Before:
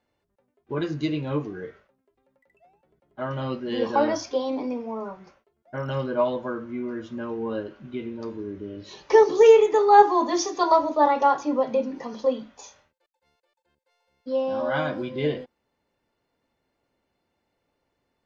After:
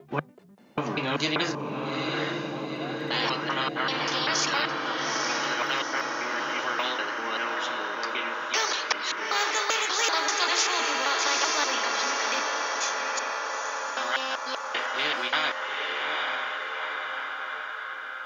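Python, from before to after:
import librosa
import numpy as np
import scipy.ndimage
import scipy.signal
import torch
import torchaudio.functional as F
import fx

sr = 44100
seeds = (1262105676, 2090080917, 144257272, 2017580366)

p1 = fx.block_reorder(x, sr, ms=194.0, group=4)
p2 = fx.filter_sweep_highpass(p1, sr, from_hz=150.0, to_hz=1400.0, start_s=0.19, end_s=3.89, q=5.4)
p3 = p2 + fx.echo_diffused(p2, sr, ms=855, feedback_pct=48, wet_db=-9.0, dry=0)
p4 = fx.spectral_comp(p3, sr, ratio=4.0)
y = p4 * 10.0 ** (-5.5 / 20.0)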